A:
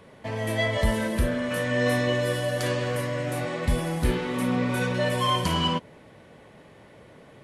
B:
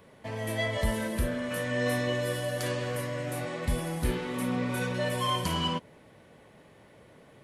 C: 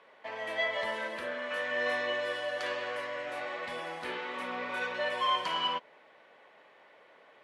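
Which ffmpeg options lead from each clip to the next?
-af "highshelf=f=11k:g=9,volume=-5dB"
-af "highpass=700,lowpass=3.2k,volume=2.5dB"

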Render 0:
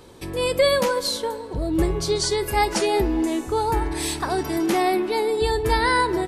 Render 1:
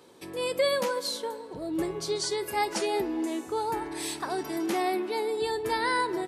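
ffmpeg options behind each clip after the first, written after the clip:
-af "highpass=200,volume=-7dB"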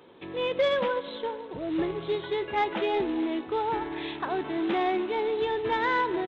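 -af "aresample=8000,acrusher=bits=4:mode=log:mix=0:aa=0.000001,aresample=44100,asoftclip=type=tanh:threshold=-17dB,volume=2dB"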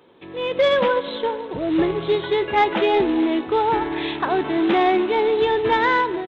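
-af "dynaudnorm=f=220:g=5:m=9dB"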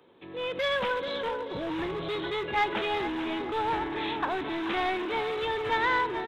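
-filter_complex "[0:a]aecho=1:1:433|866|1299|1732:0.299|0.0985|0.0325|0.0107,acrossover=split=130|860[a][b][c];[b]asoftclip=type=hard:threshold=-26.5dB[d];[a][d][c]amix=inputs=3:normalize=0,volume=-6dB"

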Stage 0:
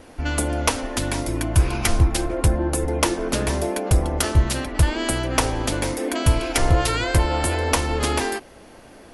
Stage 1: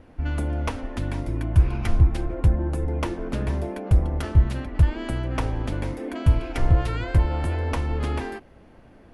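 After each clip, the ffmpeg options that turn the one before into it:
-af "bass=f=250:g=9,treble=f=4k:g=-14,volume=-8.5dB"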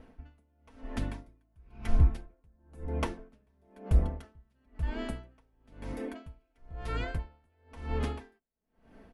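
-af "aecho=1:1:4.5:0.47,aeval=exprs='val(0)*pow(10,-40*(0.5-0.5*cos(2*PI*1*n/s))/20)':c=same,volume=-4.5dB"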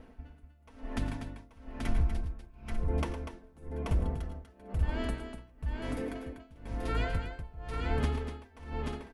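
-af "alimiter=limit=-22dB:level=0:latency=1:release=157,aecho=1:1:89|110|244|833|893:0.126|0.282|0.355|0.631|0.224,volume=1.5dB"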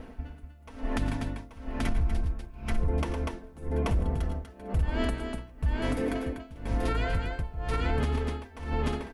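-af "alimiter=level_in=3.5dB:limit=-24dB:level=0:latency=1:release=213,volume=-3.5dB,volume=9dB"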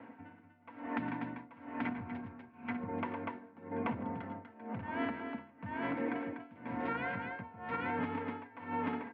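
-af "highpass=f=110:w=0.5412,highpass=f=110:w=1.3066,equalizer=f=130:t=q:w=4:g=-8,equalizer=f=210:t=q:w=4:g=9,equalizer=f=340:t=q:w=4:g=-4,equalizer=f=910:t=q:w=4:g=9,equalizer=f=1.5k:t=q:w=4:g=5,equalizer=f=2.1k:t=q:w=4:g=6,lowpass=f=2.7k:w=0.5412,lowpass=f=2.7k:w=1.3066,afreqshift=24,volume=-7.5dB"

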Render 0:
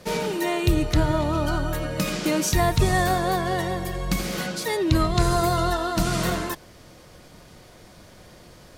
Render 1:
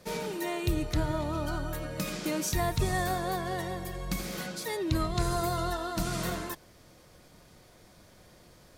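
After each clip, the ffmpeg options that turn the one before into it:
-af "highshelf=f=10k:g=5,bandreject=f=2.9k:w=27,volume=-8.5dB"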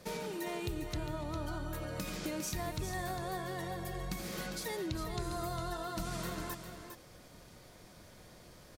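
-filter_complex "[0:a]acompressor=threshold=-38dB:ratio=3,asplit=2[a][b];[b]aecho=0:1:404:0.376[c];[a][c]amix=inputs=2:normalize=0"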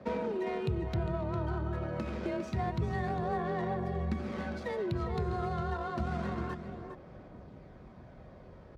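-af "adynamicsmooth=sensitivity=3:basefreq=1.4k,aphaser=in_gain=1:out_gain=1:delay=2.4:decay=0.23:speed=0.28:type=sinusoidal,afreqshift=31,volume=5dB"

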